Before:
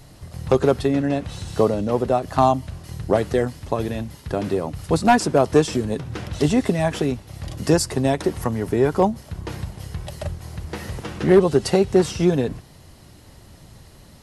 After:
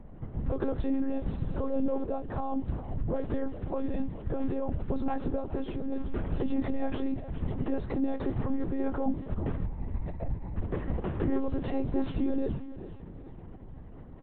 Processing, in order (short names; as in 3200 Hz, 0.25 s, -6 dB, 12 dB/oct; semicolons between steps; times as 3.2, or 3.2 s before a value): low-pass opened by the level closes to 1900 Hz, open at -14 dBFS; tilt shelf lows +8.5 dB, about 1400 Hz; 1.98–2.52 compressor 12:1, threshold -20 dBFS, peak gain reduction 14.5 dB; limiter -13 dBFS, peak gain reduction 15 dB; 5.36–5.93 resonator 63 Hz, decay 0.17 s, harmonics odd, mix 50%; 9.66–10.54 fixed phaser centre 2100 Hz, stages 8; doubler 19 ms -10.5 dB; frequency-shifting echo 0.409 s, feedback 42%, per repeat -48 Hz, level -14 dB; monotone LPC vocoder at 8 kHz 270 Hz; gain -8 dB